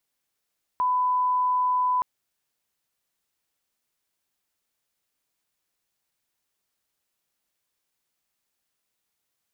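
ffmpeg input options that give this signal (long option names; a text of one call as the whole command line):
ffmpeg -f lavfi -i "sine=frequency=1000:duration=1.22:sample_rate=44100,volume=-1.94dB" out.wav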